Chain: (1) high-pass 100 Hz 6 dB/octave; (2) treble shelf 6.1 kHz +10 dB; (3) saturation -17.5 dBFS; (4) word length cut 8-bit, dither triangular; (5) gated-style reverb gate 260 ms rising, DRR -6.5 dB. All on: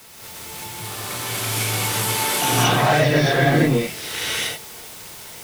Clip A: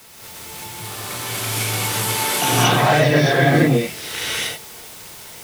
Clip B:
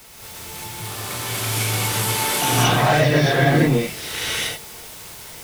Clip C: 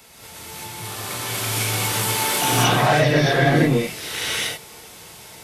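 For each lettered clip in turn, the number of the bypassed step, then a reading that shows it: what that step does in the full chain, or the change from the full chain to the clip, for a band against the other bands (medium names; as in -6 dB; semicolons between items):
3, distortion -17 dB; 1, 125 Hz band +1.5 dB; 4, distortion -19 dB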